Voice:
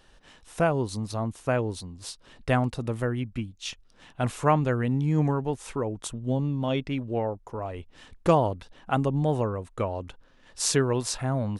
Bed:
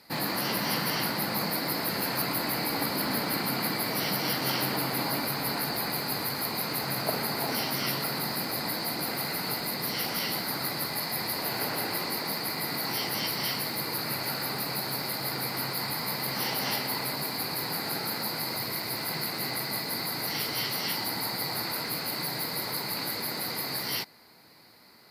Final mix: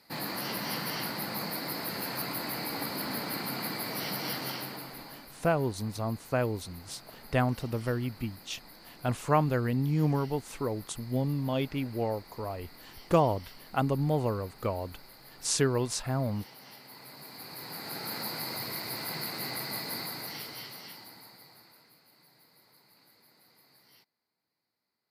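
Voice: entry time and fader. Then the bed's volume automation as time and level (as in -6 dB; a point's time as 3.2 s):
4.85 s, -3.0 dB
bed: 4.36 s -5.5 dB
5.34 s -21 dB
16.76 s -21 dB
18.17 s -4 dB
19.96 s -4 dB
22.02 s -30 dB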